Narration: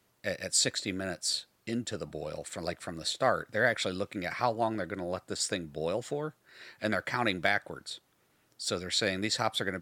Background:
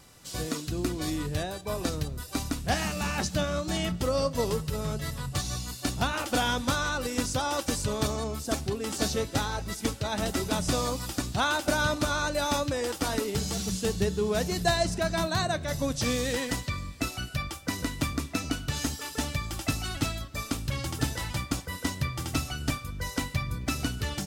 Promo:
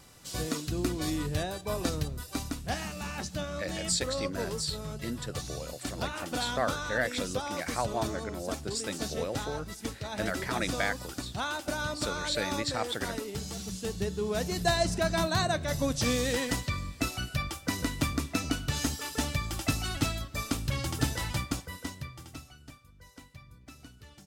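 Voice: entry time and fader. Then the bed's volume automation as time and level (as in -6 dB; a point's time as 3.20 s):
3.35 s, -3.0 dB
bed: 2.02 s -0.5 dB
2.87 s -7 dB
13.73 s -7 dB
14.96 s 0 dB
21.37 s 0 dB
22.68 s -20.5 dB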